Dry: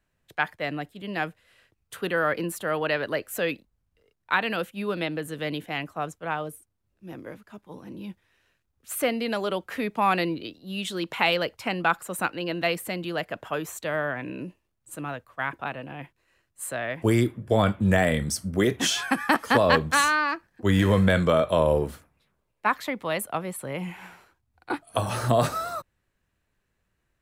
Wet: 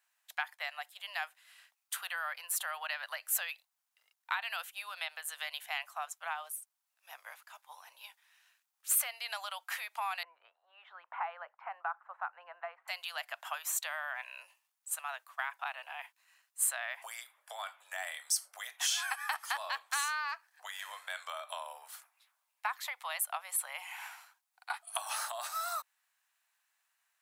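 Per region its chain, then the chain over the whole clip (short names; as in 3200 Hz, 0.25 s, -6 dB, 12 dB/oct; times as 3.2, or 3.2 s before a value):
10.23–12.88 LPF 1400 Hz 24 dB/oct + notch 610 Hz, Q 20
whole clip: compressor 6:1, threshold -31 dBFS; steep high-pass 730 Hz 48 dB/oct; high shelf 4400 Hz +9.5 dB; gain -1.5 dB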